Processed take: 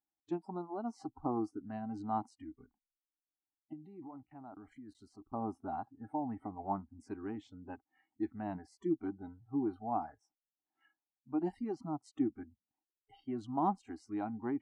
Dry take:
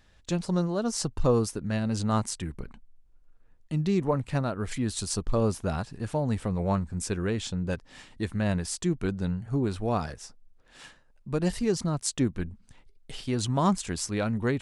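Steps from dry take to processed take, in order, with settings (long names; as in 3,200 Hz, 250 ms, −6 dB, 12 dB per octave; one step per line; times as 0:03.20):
noise reduction from a noise print of the clip's start 25 dB
0:03.73–0:05.32: output level in coarse steps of 20 dB
pair of resonant band-passes 500 Hz, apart 1.3 octaves
level +2.5 dB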